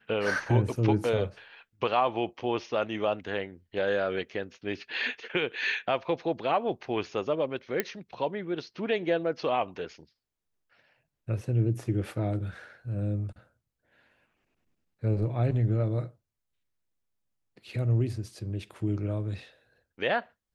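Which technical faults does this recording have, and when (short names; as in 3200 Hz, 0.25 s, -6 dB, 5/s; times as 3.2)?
7.8 pop -12 dBFS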